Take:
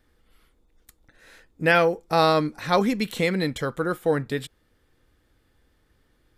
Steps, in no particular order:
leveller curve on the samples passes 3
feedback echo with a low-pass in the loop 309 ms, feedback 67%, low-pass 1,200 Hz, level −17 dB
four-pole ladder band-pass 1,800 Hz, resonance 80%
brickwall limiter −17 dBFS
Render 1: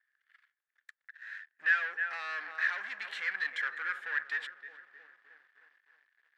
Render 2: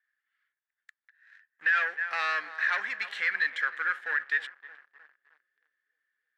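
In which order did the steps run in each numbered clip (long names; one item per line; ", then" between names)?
feedback echo with a low-pass in the loop, then brickwall limiter, then leveller curve on the samples, then four-pole ladder band-pass
feedback echo with a low-pass in the loop, then leveller curve on the samples, then four-pole ladder band-pass, then brickwall limiter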